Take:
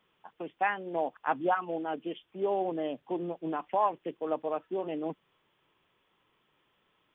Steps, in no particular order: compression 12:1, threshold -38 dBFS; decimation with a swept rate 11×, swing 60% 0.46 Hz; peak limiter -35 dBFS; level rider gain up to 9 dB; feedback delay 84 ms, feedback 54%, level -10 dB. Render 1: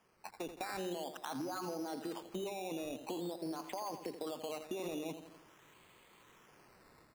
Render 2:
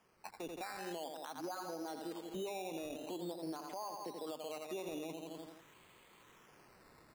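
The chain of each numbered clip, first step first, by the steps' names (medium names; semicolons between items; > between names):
peak limiter > level rider > compression > feedback delay > decimation with a swept rate; feedback delay > level rider > compression > peak limiter > decimation with a swept rate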